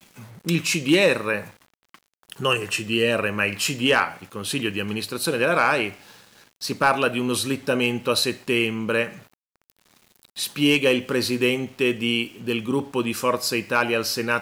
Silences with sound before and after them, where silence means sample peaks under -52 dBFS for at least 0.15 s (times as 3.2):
9.34–9.56